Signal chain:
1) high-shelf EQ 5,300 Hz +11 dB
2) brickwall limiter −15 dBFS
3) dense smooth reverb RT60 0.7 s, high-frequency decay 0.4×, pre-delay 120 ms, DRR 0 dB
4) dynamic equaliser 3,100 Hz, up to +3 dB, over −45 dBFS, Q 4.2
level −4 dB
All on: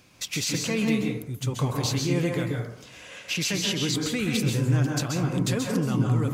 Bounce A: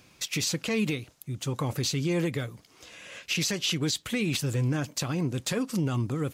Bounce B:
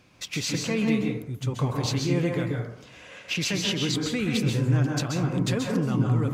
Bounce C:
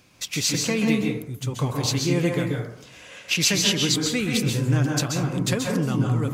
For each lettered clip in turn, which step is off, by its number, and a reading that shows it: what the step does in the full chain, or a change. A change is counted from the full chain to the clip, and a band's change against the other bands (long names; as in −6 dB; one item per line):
3, change in momentary loudness spread +2 LU
1, 8 kHz band −3.5 dB
2, change in crest factor +3.0 dB